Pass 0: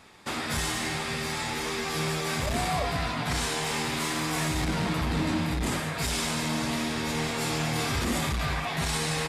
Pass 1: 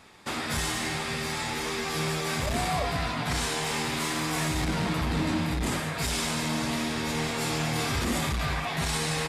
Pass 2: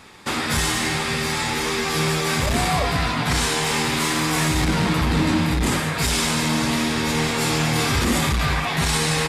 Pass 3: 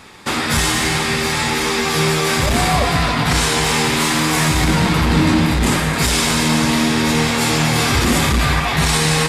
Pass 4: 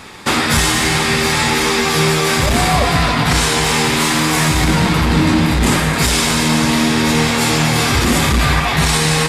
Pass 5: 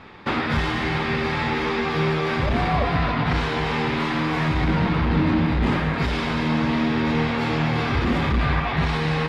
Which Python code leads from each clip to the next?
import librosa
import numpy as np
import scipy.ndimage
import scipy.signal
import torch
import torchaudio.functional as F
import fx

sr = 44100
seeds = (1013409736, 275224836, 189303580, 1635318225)

y1 = x
y2 = fx.peak_eq(y1, sr, hz=660.0, db=-4.5, octaves=0.3)
y2 = F.gain(torch.from_numpy(y2), 8.0).numpy()
y3 = y2 + 10.0 ** (-9.5 / 20.0) * np.pad(y2, (int(269 * sr / 1000.0), 0))[:len(y2)]
y3 = F.gain(torch.from_numpy(y3), 4.5).numpy()
y4 = fx.rider(y3, sr, range_db=4, speed_s=0.5)
y4 = F.gain(torch.from_numpy(y4), 2.0).numpy()
y5 = fx.air_absorb(y4, sr, metres=320.0)
y5 = F.gain(torch.from_numpy(y5), -6.0).numpy()